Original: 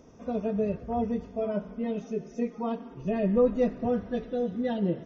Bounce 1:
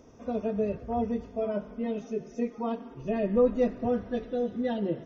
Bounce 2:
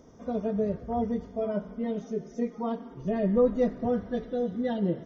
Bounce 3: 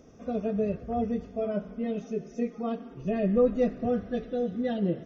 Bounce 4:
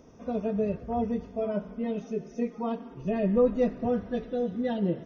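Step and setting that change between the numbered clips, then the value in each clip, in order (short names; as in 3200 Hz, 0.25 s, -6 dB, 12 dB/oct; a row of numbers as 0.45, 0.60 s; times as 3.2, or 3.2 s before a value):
notch, frequency: 180, 2600, 950, 7400 Hz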